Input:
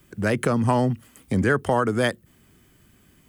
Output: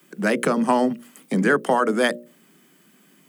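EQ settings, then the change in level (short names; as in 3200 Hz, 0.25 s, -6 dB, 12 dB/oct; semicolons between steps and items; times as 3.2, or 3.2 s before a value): steep high-pass 160 Hz 72 dB/oct; notches 60/120/180/240/300/360/420/480/540/600 Hz; +3.0 dB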